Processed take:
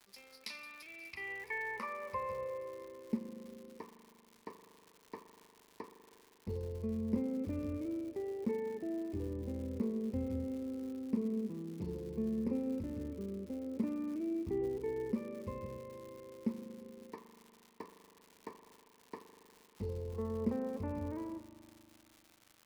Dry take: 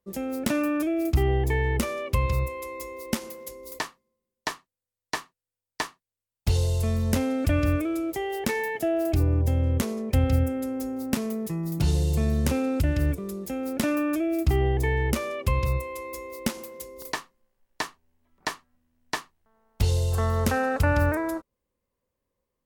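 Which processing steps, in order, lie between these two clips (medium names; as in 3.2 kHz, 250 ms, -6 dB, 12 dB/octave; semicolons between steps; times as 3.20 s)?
rippled EQ curve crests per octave 0.88, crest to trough 13 dB; band-pass sweep 3.9 kHz -> 300 Hz, 0.77–2.98 s; crackle 210 per s -42 dBFS; spring tank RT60 2.8 s, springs 39 ms, chirp 55 ms, DRR 7.5 dB; trim -5.5 dB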